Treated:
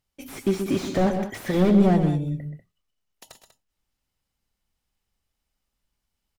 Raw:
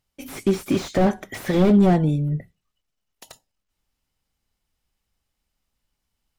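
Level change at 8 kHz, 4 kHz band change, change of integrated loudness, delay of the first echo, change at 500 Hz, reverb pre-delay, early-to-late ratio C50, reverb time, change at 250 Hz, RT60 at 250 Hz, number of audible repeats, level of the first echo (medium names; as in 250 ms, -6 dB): no reading, -2.5 dB, -2.0 dB, 127 ms, -2.0 dB, no reverb, no reverb, no reverb, -2.0 dB, no reverb, 2, -9.5 dB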